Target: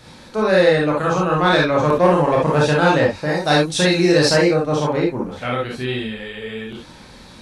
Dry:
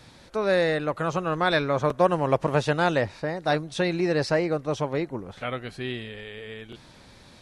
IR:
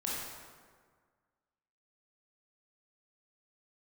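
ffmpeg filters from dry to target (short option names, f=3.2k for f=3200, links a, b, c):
-filter_complex "[0:a]asettb=1/sr,asplit=3[a][b][c];[a]atrim=end=3.254[d];[b]atrim=start=3.25:end=4.49,asetpts=PTS-STARTPTS,afade=t=in:d=0.004:c=qsin,afade=t=out:st=1.236:d=0.004:c=qsin,highshelf=f=3.5k:g=12[e];[c]atrim=start=4.486[f];[d][e]acrossfade=d=0.004:c1=hsin:c2=qsin[g];[g][f]acrossfade=d=0.004:c1=qsin:c2=hsin,asoftclip=type=tanh:threshold=-12dB[h];[1:a]atrim=start_sample=2205,atrim=end_sample=3528[i];[h][i]afir=irnorm=-1:irlink=0,volume=7.5dB"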